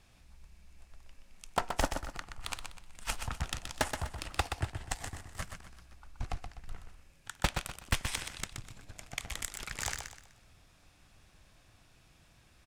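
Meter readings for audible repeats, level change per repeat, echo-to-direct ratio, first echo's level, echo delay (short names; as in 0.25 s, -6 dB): 3, -10.0 dB, -6.5 dB, -7.0 dB, 0.125 s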